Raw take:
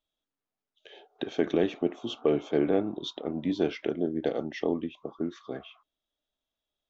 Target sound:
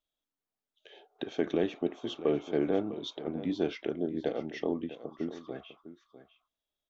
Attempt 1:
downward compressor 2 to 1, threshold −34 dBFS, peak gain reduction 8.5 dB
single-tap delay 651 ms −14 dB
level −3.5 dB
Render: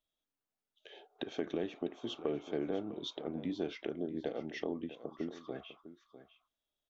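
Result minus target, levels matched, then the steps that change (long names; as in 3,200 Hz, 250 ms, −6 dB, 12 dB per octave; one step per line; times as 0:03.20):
downward compressor: peak gain reduction +8.5 dB
remove: downward compressor 2 to 1, threshold −34 dBFS, peak gain reduction 8.5 dB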